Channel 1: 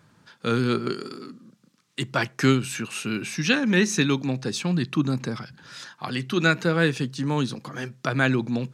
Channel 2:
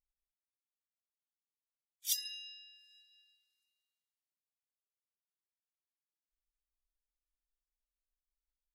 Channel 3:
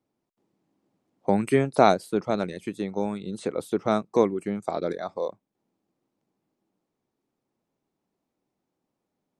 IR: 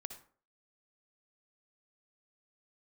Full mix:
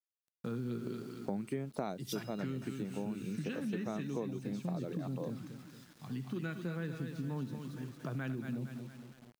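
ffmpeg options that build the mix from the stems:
-filter_complex "[0:a]volume=-15.5dB,asplit=3[a][b][c];[b]volume=-8.5dB[d];[c]volume=-12dB[e];[1:a]volume=-3dB,asplit=2[f][g];[g]volume=-8.5dB[h];[2:a]volume=-12.5dB[i];[a][f]amix=inputs=2:normalize=0,afwtdn=0.00794,acompressor=threshold=-42dB:ratio=3,volume=0dB[j];[3:a]atrim=start_sample=2205[k];[d][h]amix=inputs=2:normalize=0[l];[l][k]afir=irnorm=-1:irlink=0[m];[e]aecho=0:1:230|460|690|920|1150|1380|1610:1|0.47|0.221|0.104|0.0488|0.0229|0.0108[n];[i][j][m][n]amix=inputs=4:normalize=0,acrusher=bits=9:mix=0:aa=0.000001,equalizer=f=170:w=0.66:g=8.5,acompressor=threshold=-35dB:ratio=4"

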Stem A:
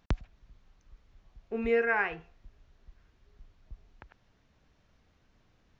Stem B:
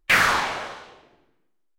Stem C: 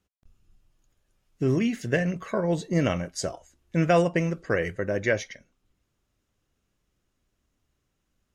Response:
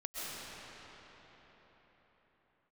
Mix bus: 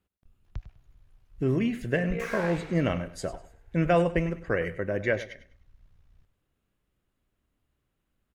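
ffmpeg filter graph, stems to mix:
-filter_complex "[0:a]tremolo=f=61:d=0.824,asubboost=boost=11:cutoff=95,adelay=450,volume=-4dB,asplit=3[a][b][c];[b]volume=-24dB[d];[c]volume=-13dB[e];[1:a]equalizer=f=2.2k:t=o:w=0.77:g=10.5,asoftclip=type=tanh:threshold=-22dB,adelay=2100,volume=-19dB[f];[2:a]equalizer=f=5.9k:w=1.8:g=-12,volume=-2dB,asplit=2[g][h];[h]volume=-14.5dB[i];[3:a]atrim=start_sample=2205[j];[d][j]afir=irnorm=-1:irlink=0[k];[e][i]amix=inputs=2:normalize=0,aecho=0:1:100|200|300|400:1|0.26|0.0676|0.0176[l];[a][f][g][k][l]amix=inputs=5:normalize=0"

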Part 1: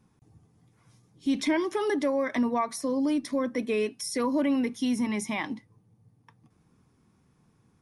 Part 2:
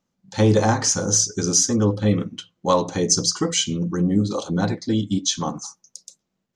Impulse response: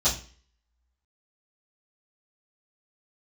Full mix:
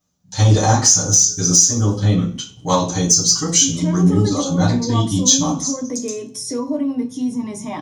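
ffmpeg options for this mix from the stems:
-filter_complex "[0:a]equalizer=f=125:t=o:w=1:g=12,equalizer=f=250:t=o:w=1:g=9,equalizer=f=500:t=o:w=1:g=7,equalizer=f=1k:t=o:w=1:g=7,equalizer=f=2k:t=o:w=1:g=-4,equalizer=f=8k:t=o:w=1:g=11,alimiter=limit=-19dB:level=0:latency=1:release=267,adelay=2350,volume=0.5dB,asplit=2[a][b];[b]volume=-14dB[c];[1:a]acontrast=30,aemphasis=mode=production:type=50kf,volume=-8dB,asplit=3[d][e][f];[e]volume=-8dB[g];[f]volume=-20dB[h];[2:a]atrim=start_sample=2205[i];[c][g]amix=inputs=2:normalize=0[j];[j][i]afir=irnorm=-1:irlink=0[k];[h]aecho=0:1:103|206|309|412|515|618|721:1|0.49|0.24|0.118|0.0576|0.0282|0.0138[l];[a][d][k][l]amix=inputs=4:normalize=0,alimiter=limit=-1.5dB:level=0:latency=1:release=389"

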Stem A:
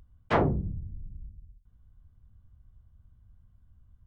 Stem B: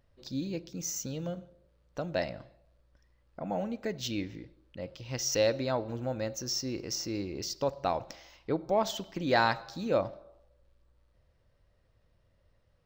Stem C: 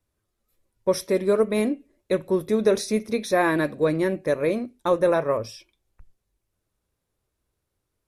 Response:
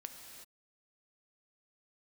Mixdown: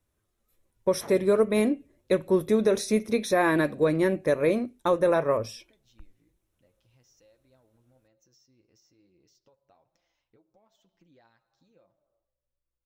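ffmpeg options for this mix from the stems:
-filter_complex "[0:a]highpass=110,adelay=700,volume=-18.5dB[a];[1:a]acompressor=threshold=-40dB:ratio=5,flanger=delay=5.7:depth=3.8:regen=35:speed=1.1:shape=sinusoidal,adelay=1850,volume=-18.5dB[b];[2:a]volume=0.5dB[c];[a][b][c]amix=inputs=3:normalize=0,equalizer=f=4.7k:t=o:w=0.2:g=-5.5,alimiter=limit=-13dB:level=0:latency=1:release=253"

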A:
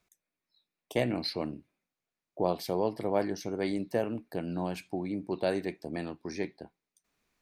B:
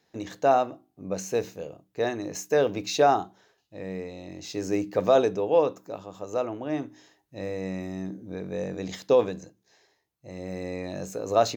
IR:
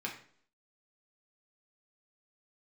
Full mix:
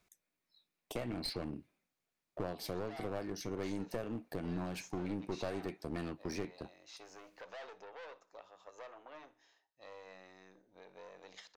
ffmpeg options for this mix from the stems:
-filter_complex "[0:a]acompressor=threshold=-34dB:ratio=6,aeval=exprs='clip(val(0),-1,0.00891)':c=same,volume=1dB,asplit=2[a][b];[1:a]aeval=exprs='(tanh(25.1*val(0)+0.75)-tanh(0.75))/25.1':c=same,acompressor=threshold=-33dB:ratio=6,acrossover=split=550 6500:gain=0.0794 1 0.0631[c][d][e];[c][d][e]amix=inputs=3:normalize=0,adelay=2450,volume=-7dB,asplit=2[f][g];[g]volume=-21dB[h];[b]apad=whole_len=617889[i];[f][i]sidechaincompress=threshold=-42dB:ratio=8:attack=23:release=157[j];[h]aecho=0:1:61|122|183|244|305|366:1|0.46|0.212|0.0973|0.0448|0.0206[k];[a][j][k]amix=inputs=3:normalize=0"

